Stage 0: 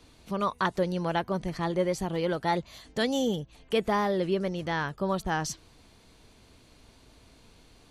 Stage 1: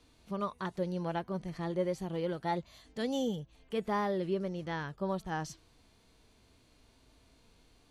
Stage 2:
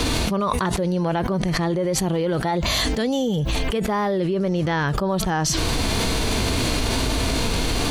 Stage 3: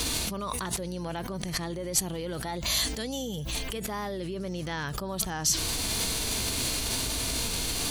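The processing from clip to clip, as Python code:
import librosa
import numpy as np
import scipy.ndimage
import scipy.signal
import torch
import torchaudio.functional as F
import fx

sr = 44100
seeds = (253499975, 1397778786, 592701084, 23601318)

y1 = fx.hpss(x, sr, part='percussive', gain_db=-8)
y1 = y1 * 10.0 ** (-5.0 / 20.0)
y2 = fx.env_flatten(y1, sr, amount_pct=100)
y2 = y2 * 10.0 ** (6.0 / 20.0)
y3 = fx.add_hum(y2, sr, base_hz=60, snr_db=11)
y3 = librosa.effects.preemphasis(y3, coef=0.8, zi=[0.0])
y3 = y3 * 10.0 ** (1.0 / 20.0)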